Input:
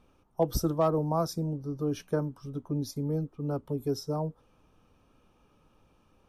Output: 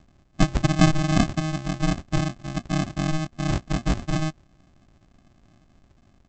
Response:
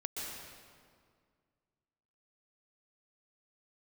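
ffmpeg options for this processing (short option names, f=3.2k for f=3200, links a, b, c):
-af "equalizer=f=2.3k:w=0.81:g=6,aresample=16000,acrusher=samples=34:mix=1:aa=0.000001,aresample=44100,volume=7dB"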